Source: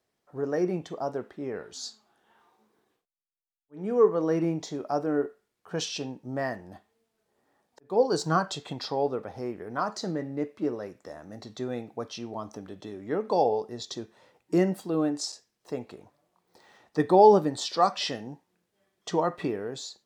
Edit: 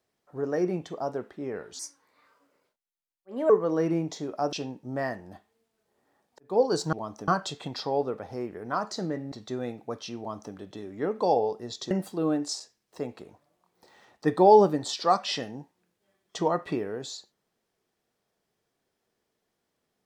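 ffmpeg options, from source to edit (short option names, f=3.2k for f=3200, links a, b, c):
-filter_complex "[0:a]asplit=8[a][b][c][d][e][f][g][h];[a]atrim=end=1.794[i];[b]atrim=start=1.79:end=4.01,asetpts=PTS-STARTPTS,asetrate=57330,aresample=44100,atrim=end_sample=75309,asetpts=PTS-STARTPTS[j];[c]atrim=start=4.006:end=5.042[k];[d]atrim=start=5.928:end=8.332[l];[e]atrim=start=12.278:end=12.632[m];[f]atrim=start=8.328:end=10.372[n];[g]atrim=start=11.408:end=14.002[o];[h]atrim=start=14.628[p];[i][j]acrossfade=d=0.004:c1=hsin:c2=hsin[q];[q][k]acrossfade=d=0.004:c1=hsin:c2=hsin[r];[r][l]acrossfade=d=0.004:c1=hsin:c2=hsin[s];[s][m]acrossfade=d=0.004:c1=hsin:c2=hsin[t];[t][n]acrossfade=d=0.004:c1=hsin:c2=hsin[u];[u][o]acrossfade=d=0.004:c1=hsin:c2=hsin[v];[v][p]acrossfade=d=0.004:c1=hsin:c2=hsin"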